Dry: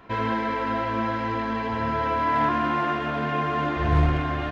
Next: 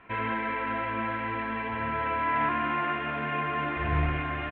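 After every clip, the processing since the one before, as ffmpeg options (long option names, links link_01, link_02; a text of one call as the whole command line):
ffmpeg -i in.wav -af "firequalizer=gain_entry='entry(530,0);entry(2400,10);entry(5300,-23)':delay=0.05:min_phase=1,volume=-7dB" out.wav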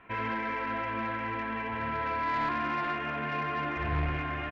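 ffmpeg -i in.wav -af "asoftclip=type=tanh:threshold=-21dB,volume=-1.5dB" out.wav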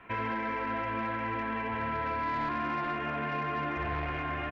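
ffmpeg -i in.wav -filter_complex "[0:a]acrossover=split=330|1200[link_01][link_02][link_03];[link_01]acompressor=threshold=-40dB:ratio=4[link_04];[link_02]acompressor=threshold=-36dB:ratio=4[link_05];[link_03]acompressor=threshold=-41dB:ratio=4[link_06];[link_04][link_05][link_06]amix=inputs=3:normalize=0,volume=2.5dB" out.wav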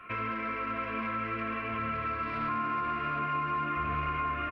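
ffmpeg -i in.wav -filter_complex "[0:a]superequalizer=9b=0.355:10b=3.55:12b=2:15b=0.355:16b=3.55,aecho=1:1:702:0.531,acrossover=split=310[link_01][link_02];[link_02]acompressor=threshold=-31dB:ratio=2.5[link_03];[link_01][link_03]amix=inputs=2:normalize=0,volume=-1.5dB" out.wav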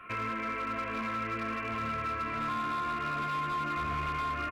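ffmpeg -i in.wav -af "volume=29dB,asoftclip=hard,volume=-29dB" out.wav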